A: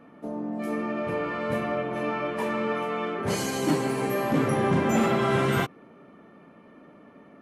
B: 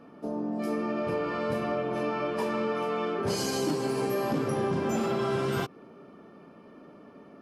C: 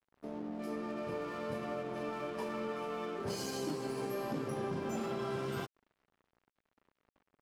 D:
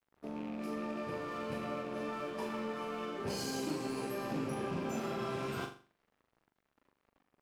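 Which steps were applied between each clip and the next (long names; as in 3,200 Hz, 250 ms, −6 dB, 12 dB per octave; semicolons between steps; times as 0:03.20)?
thirty-one-band graphic EQ 400 Hz +4 dB, 2,000 Hz −7 dB, 5,000 Hz +10 dB; downward compressor, threshold −25 dBFS, peak gain reduction 7.5 dB
dead-zone distortion −44.5 dBFS; level −8 dB
loose part that buzzes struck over −43 dBFS, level −43 dBFS; on a send: flutter between parallel walls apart 7.1 metres, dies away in 0.39 s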